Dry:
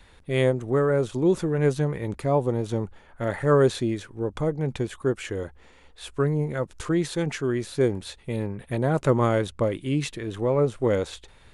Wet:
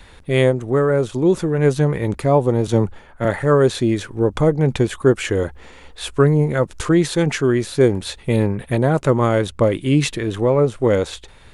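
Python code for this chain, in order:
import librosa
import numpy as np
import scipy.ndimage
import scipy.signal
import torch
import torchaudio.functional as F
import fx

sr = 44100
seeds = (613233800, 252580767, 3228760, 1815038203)

y = fx.rider(x, sr, range_db=4, speed_s=0.5)
y = fx.band_widen(y, sr, depth_pct=40, at=(2.67, 3.25))
y = y * 10.0 ** (7.5 / 20.0)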